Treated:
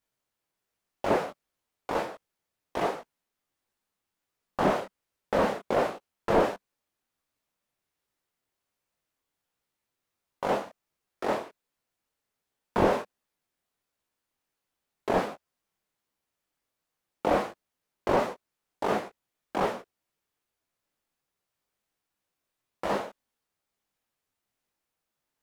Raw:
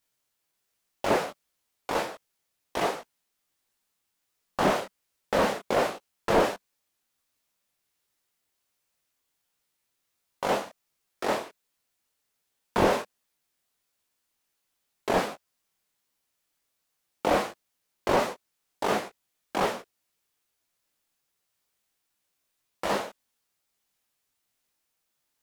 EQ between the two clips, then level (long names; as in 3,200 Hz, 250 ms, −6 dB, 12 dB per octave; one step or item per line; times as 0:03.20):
high-shelf EQ 2,300 Hz −9 dB
0.0 dB